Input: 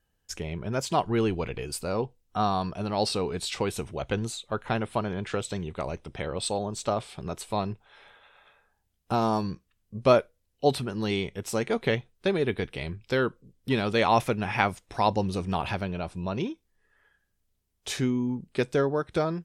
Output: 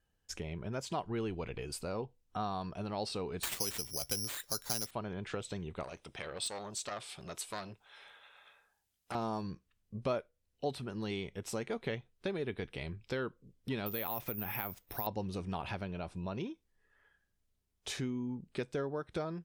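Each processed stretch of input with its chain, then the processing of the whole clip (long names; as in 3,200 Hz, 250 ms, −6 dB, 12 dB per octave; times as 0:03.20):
0:03.43–0:04.91: high-shelf EQ 11,000 Hz +10 dB + bad sample-rate conversion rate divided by 8×, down none, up zero stuff
0:05.83–0:09.15: spectral tilt +2.5 dB per octave + hard clipping −18 dBFS + saturating transformer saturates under 1,400 Hz
0:13.86–0:15.07: downward compressor 4 to 1, threshold −24 dBFS + bad sample-rate conversion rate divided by 3×, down filtered, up zero stuff
whole clip: high-shelf EQ 10,000 Hz −5.5 dB; downward compressor 2 to 1, threshold −35 dBFS; level −4 dB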